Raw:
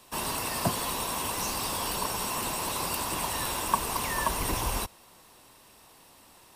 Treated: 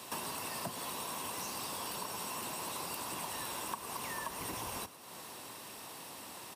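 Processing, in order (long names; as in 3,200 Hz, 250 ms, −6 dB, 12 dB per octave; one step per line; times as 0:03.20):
high-pass filter 120 Hz 12 dB per octave
downward compressor 6 to 1, threshold −47 dBFS, peak gain reduction 25.5 dB
on a send: echo with shifted repeats 110 ms, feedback 56%, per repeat +53 Hz, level −16 dB
on the sum: level +7.5 dB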